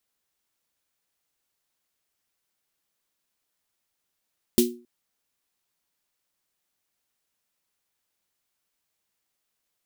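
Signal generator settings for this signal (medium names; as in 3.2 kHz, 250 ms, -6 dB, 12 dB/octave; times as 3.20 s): snare drum length 0.27 s, tones 240 Hz, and 360 Hz, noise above 2.8 kHz, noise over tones -4 dB, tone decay 0.37 s, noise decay 0.21 s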